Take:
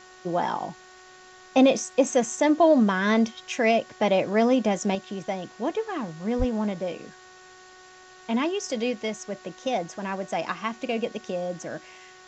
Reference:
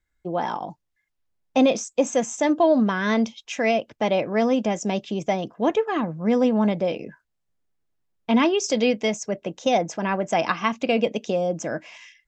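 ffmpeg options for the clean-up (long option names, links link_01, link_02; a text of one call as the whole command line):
ffmpeg -i in.wav -filter_complex "[0:a]bandreject=frequency=369.9:width_type=h:width=4,bandreject=frequency=739.8:width_type=h:width=4,bandreject=frequency=1109.7:width_type=h:width=4,bandreject=frequency=1479.6:width_type=h:width=4,bandreject=frequency=1849.5:width_type=h:width=4,asplit=3[link_01][link_02][link_03];[link_01]afade=type=out:start_time=6.38:duration=0.02[link_04];[link_02]highpass=frequency=140:width=0.5412,highpass=frequency=140:width=1.3066,afade=type=in:start_time=6.38:duration=0.02,afade=type=out:start_time=6.5:duration=0.02[link_05];[link_03]afade=type=in:start_time=6.5:duration=0.02[link_06];[link_04][link_05][link_06]amix=inputs=3:normalize=0,afwtdn=0.0032,asetnsamples=nb_out_samples=441:pad=0,asendcmd='4.95 volume volume 6.5dB',volume=0dB" out.wav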